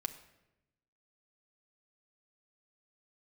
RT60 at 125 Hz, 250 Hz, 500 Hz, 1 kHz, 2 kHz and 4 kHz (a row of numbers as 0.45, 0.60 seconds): 1.4, 1.2, 1.0, 0.85, 0.85, 0.70 seconds